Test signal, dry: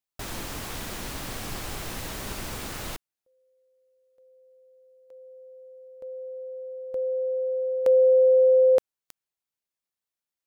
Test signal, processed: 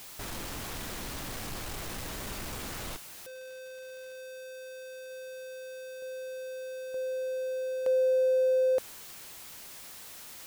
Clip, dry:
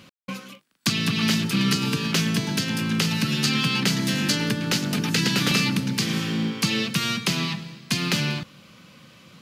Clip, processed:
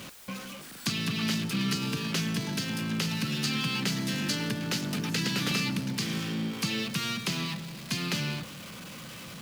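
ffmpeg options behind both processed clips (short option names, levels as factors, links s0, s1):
-af "aeval=exprs='val(0)+0.5*0.0316*sgn(val(0))':c=same,volume=0.376"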